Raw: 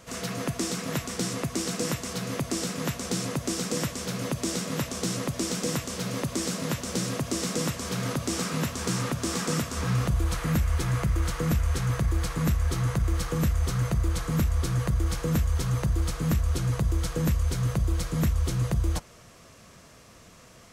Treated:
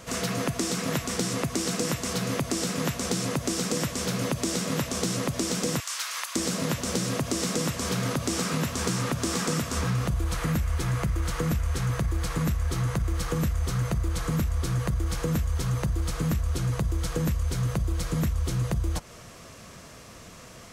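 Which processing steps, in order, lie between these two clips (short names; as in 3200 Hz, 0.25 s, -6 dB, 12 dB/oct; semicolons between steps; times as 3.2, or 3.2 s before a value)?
5.8–6.36 inverse Chebyshev high-pass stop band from 230 Hz, stop band 70 dB; compressor 4:1, threshold -30 dBFS, peak gain reduction 8.5 dB; gain +5.5 dB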